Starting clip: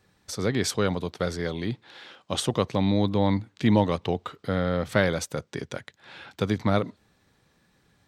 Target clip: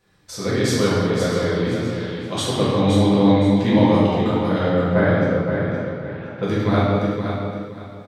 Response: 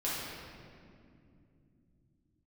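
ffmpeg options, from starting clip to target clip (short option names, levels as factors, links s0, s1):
-filter_complex "[0:a]asettb=1/sr,asplit=3[s0][s1][s2];[s0]atrim=end=4.694[s3];[s1]atrim=start=4.69:end=6.43,asetpts=PTS-STARTPTS,afade=t=in:d=0.004:c=qsin,afade=t=out:st=1.736:d=0.004:c=qsin,lowpass=1600[s4];[s2]atrim=start=6.426[s5];[s3][s4]acrossfade=d=0.004:c1=hsin:c2=qsin[s6];[s6][s5]acrossfade=d=0.004:c1=qsin:c2=hsin,aecho=1:1:518|1036|1554:0.447|0.121|0.0326[s7];[1:a]atrim=start_sample=2205,afade=t=out:st=0.45:d=0.01,atrim=end_sample=20286[s8];[s7][s8]afir=irnorm=-1:irlink=0"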